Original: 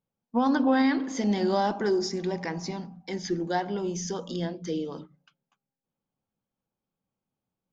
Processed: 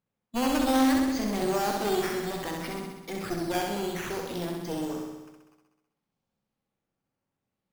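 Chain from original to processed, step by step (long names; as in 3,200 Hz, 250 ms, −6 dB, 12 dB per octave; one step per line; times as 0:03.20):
asymmetric clip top −37 dBFS, bottom −17.5 dBFS
sample-and-hold swept by an LFO 8×, swing 100% 0.6 Hz
flutter between parallel walls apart 11.1 metres, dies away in 1.1 s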